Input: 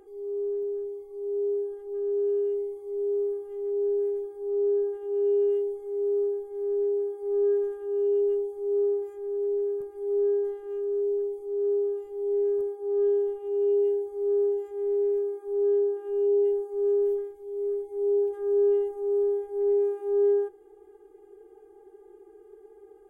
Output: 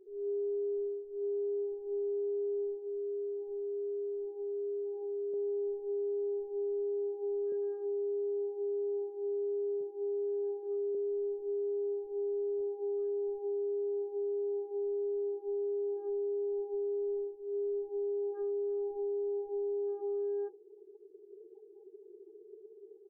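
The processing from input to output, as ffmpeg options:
-filter_complex "[0:a]asettb=1/sr,asplit=3[a][b][c];[a]atrim=end=2.834[d];[b]atrim=start=2.83:end=5.34,asetpts=PTS-STARTPTS,afade=t=in:d=0.004:c=qsin,afade=t=out:st=2.506:d=0.004:c=qsin,acompressor=threshold=-34dB:ratio=6:attack=3.2:release=140:knee=1:detection=peak[e];[c]atrim=start=5.336[f];[d][e]acrossfade=d=0.004:c1=hsin:c2=qsin[g];[g][f]acrossfade=d=0.004:c1=qsin:c2=hsin,asettb=1/sr,asplit=3[h][i][j];[h]atrim=end=7.524[k];[i]atrim=start=7.52:end=10.95,asetpts=PTS-STARTPTS,afade=t=in:d=0.004:c=qsin,afade=t=out:st=3.426:d=0.004:c=qsin,highpass=f=130:w=0.5412,highpass=f=130:w=1.3066[l];[j]atrim=start=10.946[m];[k][l]acrossfade=d=0.004:c1=hsin:c2=qsin[n];[n][m]acrossfade=d=0.004:c1=qsin:c2=hsin,afftdn=nr=31:nf=-43,alimiter=level_in=5dB:limit=-24dB:level=0:latency=1:release=121,volume=-5dB,volume=-1.5dB"

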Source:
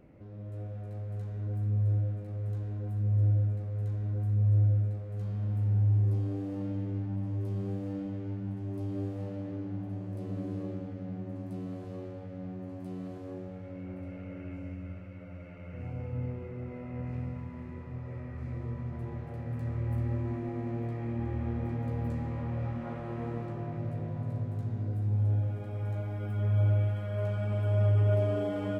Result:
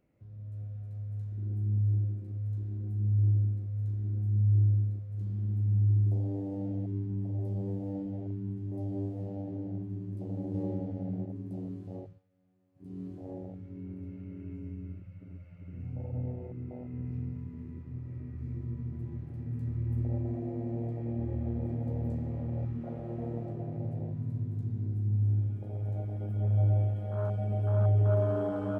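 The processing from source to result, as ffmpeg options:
-filter_complex "[0:a]asplit=5[a][b][c][d][e];[a]atrim=end=10.542[f];[b]atrim=start=10.538:end=11.252,asetpts=PTS-STARTPTS,volume=3.5dB[g];[c]atrim=start=11.248:end=12.23,asetpts=PTS-STARTPTS,afade=t=out:st=0.712:d=0.27:silence=0.16788[h];[d]atrim=start=12.23:end=12.74,asetpts=PTS-STARTPTS,volume=-15.5dB[i];[e]atrim=start=12.74,asetpts=PTS-STARTPTS,afade=t=in:d=0.27:silence=0.16788[j];[f][g]acrossfade=d=0.004:c1=hsin:c2=hsin[k];[h][i][j]concat=n=3:v=0:a=1[l];[k][l]acrossfade=d=0.004:c1=hsin:c2=hsin,highshelf=f=2.4k:g=9,afwtdn=0.0224"

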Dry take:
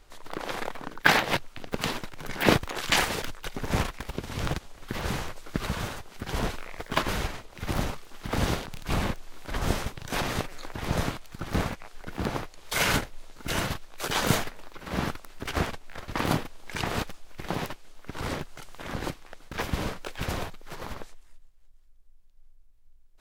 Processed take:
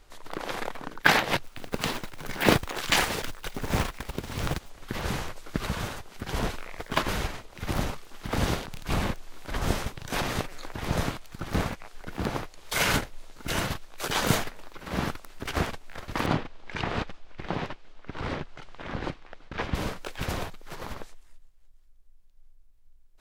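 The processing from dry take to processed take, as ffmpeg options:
-filter_complex "[0:a]asettb=1/sr,asplit=3[a][b][c];[a]atrim=end=1.434[d];[b]atrim=start=1.43:end=4.7,asetpts=PTS-STARTPTS,afade=t=in:d=0.004:c=qsin,afade=t=out:st=3.266:d=0.004:c=qsin,acrusher=bits=4:mode=log:mix=0:aa=0.000001[e];[c]atrim=start=4.696[f];[d][e]acrossfade=d=0.004:c1=hsin:c2=qsin[g];[g][f]acrossfade=d=0.004:c1=qsin:c2=hsin,asettb=1/sr,asplit=3[h][i][j];[h]atrim=end=16.264[k];[i]atrim=start=16.26:end=19.75,asetpts=PTS-STARTPTS,afade=t=in:d=0.004:c=qsin,afade=t=out:st=3.486:d=0.004:c=qsin,lowpass=3.8k[l];[j]atrim=start=19.746[m];[k][l]acrossfade=d=0.004:c1=hsin:c2=qsin[n];[n][m]acrossfade=d=0.004:c1=qsin:c2=hsin"

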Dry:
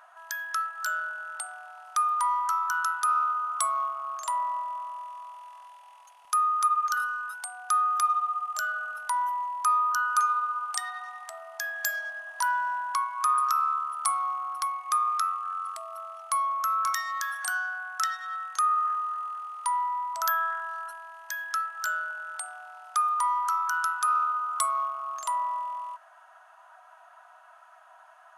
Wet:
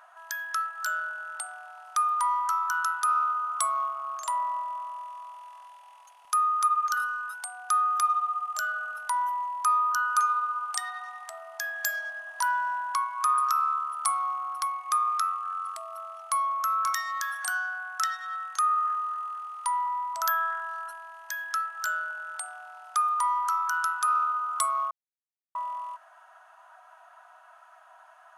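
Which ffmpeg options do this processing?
-filter_complex "[0:a]asettb=1/sr,asplit=3[a][b][c];[a]atrim=end=18.564[d];[b]atrim=start=18.56:end=19.87,asetpts=PTS-STARTPTS,afade=t=in:d=0.004:c=qsin,afade=t=out:st=1.306:d=0.004:c=qsin,highpass=580[e];[c]atrim=start=19.866[f];[d][e]acrossfade=d=0.004:c1=hsin:c2=qsin[g];[g][f]acrossfade=d=0.004:c1=qsin:c2=hsin,asplit=3[h][i][j];[h]atrim=end=24.91,asetpts=PTS-STARTPTS,afade=t=out:st=24.906:d=0.004:c=hsin[k];[i]atrim=start=24.91:end=25.55,asetpts=PTS-STARTPTS,volume=0[l];[j]atrim=start=25.55,asetpts=PTS-STARTPTS,afade=t=in:d=0.004:c=hsin[m];[k][l][m]concat=n=3:v=0:a=1"

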